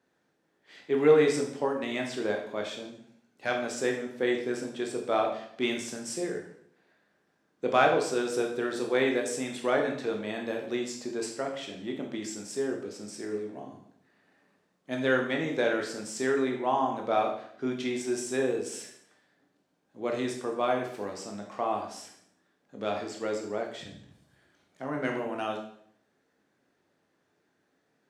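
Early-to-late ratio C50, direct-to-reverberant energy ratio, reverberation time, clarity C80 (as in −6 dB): 6.0 dB, 1.0 dB, 0.65 s, 9.5 dB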